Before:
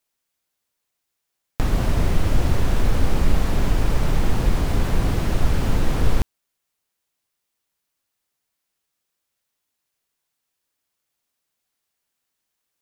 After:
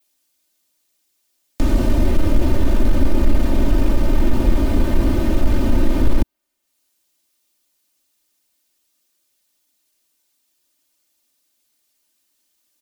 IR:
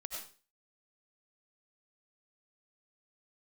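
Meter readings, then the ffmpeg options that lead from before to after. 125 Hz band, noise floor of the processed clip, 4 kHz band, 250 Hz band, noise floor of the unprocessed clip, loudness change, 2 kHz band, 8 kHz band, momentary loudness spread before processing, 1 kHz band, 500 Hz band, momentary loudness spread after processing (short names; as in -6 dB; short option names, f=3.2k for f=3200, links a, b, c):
+1.0 dB, -69 dBFS, -1.5 dB, +7.0 dB, -79 dBFS, +3.0 dB, -1.0 dB, -2.5 dB, 2 LU, -0.5 dB, +4.5 dB, 2 LU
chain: -filter_complex "[0:a]adynamicequalizer=threshold=0.002:dfrequency=7100:dqfactor=0.72:tfrequency=7100:tqfactor=0.72:attack=5:release=100:ratio=0.375:range=2.5:mode=cutabove:tftype=bell,aecho=1:1:3.3:0.94,acrossover=split=160|530|2900[a][b][c][d];[b]acontrast=68[e];[c]alimiter=level_in=3dB:limit=-24dB:level=0:latency=1,volume=-3dB[f];[d]acompressor=mode=upward:threshold=-58dB:ratio=2.5[g];[a][e][f][g]amix=inputs=4:normalize=0,asoftclip=type=tanh:threshold=-3.5dB"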